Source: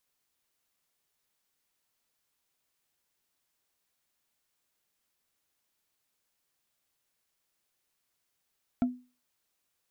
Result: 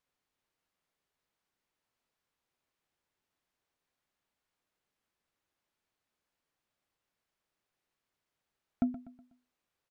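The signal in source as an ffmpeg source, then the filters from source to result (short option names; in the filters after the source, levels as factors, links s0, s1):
-f lavfi -i "aevalsrc='0.1*pow(10,-3*t/0.33)*sin(2*PI*249*t)+0.0355*pow(10,-3*t/0.098)*sin(2*PI*686.5*t)+0.0126*pow(10,-3*t/0.044)*sin(2*PI*1345.6*t)+0.00447*pow(10,-3*t/0.024)*sin(2*PI*2224.3*t)+0.00158*pow(10,-3*t/0.015)*sin(2*PI*3321.7*t)':d=0.45:s=44100"
-af "lowpass=f=2000:p=1,aecho=1:1:123|246|369|492:0.2|0.0798|0.0319|0.0128"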